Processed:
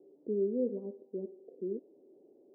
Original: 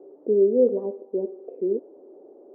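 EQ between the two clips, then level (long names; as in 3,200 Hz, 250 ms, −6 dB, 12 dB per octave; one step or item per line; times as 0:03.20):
resonant band-pass 130 Hz, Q 1.4
−1.0 dB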